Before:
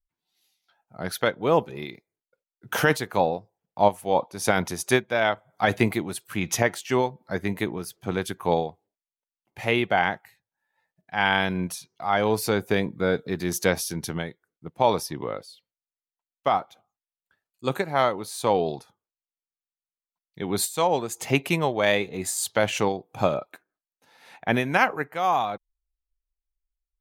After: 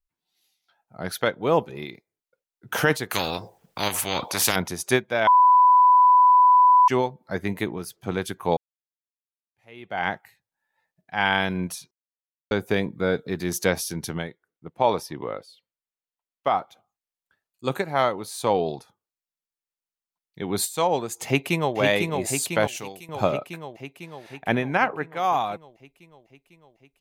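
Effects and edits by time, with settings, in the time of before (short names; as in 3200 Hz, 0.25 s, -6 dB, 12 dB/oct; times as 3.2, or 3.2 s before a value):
3.11–4.56 spectral compressor 4:1
5.27–6.88 bleep 996 Hz -11.5 dBFS
8.57–10.08 fade in exponential
11.91–12.51 mute
14.27–16.58 tone controls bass -3 dB, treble -6 dB
21.25–21.76 echo throw 0.5 s, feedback 70%, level -4 dB
22.67–23.09 pre-emphasis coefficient 0.8
24.52–25.17 LPF 2300 Hz 6 dB/oct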